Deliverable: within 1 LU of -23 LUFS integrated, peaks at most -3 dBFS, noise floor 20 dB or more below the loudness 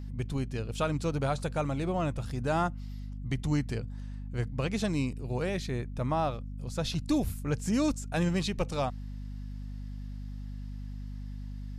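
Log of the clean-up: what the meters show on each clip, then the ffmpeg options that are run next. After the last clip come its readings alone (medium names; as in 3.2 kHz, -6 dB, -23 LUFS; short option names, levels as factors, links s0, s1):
hum 50 Hz; highest harmonic 250 Hz; hum level -36 dBFS; loudness -33.0 LUFS; peak level -15.5 dBFS; loudness target -23.0 LUFS
-> -af "bandreject=f=50:t=h:w=4,bandreject=f=100:t=h:w=4,bandreject=f=150:t=h:w=4,bandreject=f=200:t=h:w=4,bandreject=f=250:t=h:w=4"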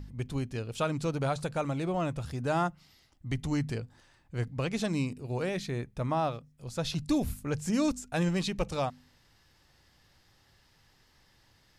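hum not found; loudness -32.5 LUFS; peak level -16.5 dBFS; loudness target -23.0 LUFS
-> -af "volume=2.99"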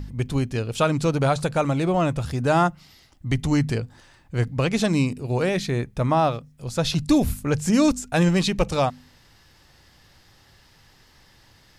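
loudness -23.0 LUFS; peak level -7.0 dBFS; noise floor -56 dBFS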